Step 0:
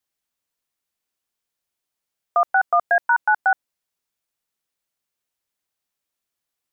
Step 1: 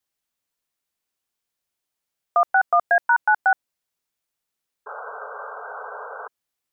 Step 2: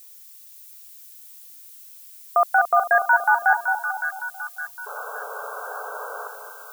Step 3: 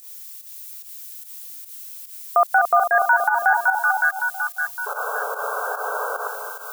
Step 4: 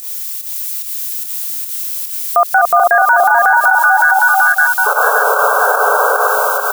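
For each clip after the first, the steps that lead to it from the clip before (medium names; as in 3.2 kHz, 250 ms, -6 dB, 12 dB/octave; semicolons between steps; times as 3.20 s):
painted sound noise, 4.86–6.28 s, 410–1600 Hz -35 dBFS
added noise violet -46 dBFS; two-band feedback delay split 1.2 kHz, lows 221 ms, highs 562 ms, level -6.5 dB
peak limiter -15 dBFS, peak gain reduction 8.5 dB; volume shaper 146 bpm, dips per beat 1, -11 dB, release 111 ms; trim +7.5 dB
delay 437 ms -6.5 dB; loudness maximiser +16.5 dB; trim -1 dB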